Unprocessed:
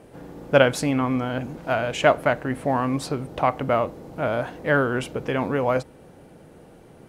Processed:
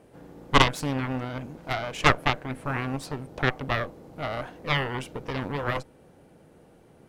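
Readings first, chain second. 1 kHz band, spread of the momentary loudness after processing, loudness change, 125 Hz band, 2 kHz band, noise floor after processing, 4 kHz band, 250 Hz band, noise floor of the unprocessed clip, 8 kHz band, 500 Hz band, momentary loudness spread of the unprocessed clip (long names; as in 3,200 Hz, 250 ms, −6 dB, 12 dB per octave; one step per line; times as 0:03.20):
−3.0 dB, 13 LU, −4.0 dB, −1.5 dB, −1.5 dB, −56 dBFS, +3.5 dB, −6.5 dB, −49 dBFS, −3.0 dB, −10.0 dB, 10 LU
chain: harmonic generator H 3 −8 dB, 4 −8 dB, 5 −28 dB, 7 −22 dB, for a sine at −1.5 dBFS
level −1.5 dB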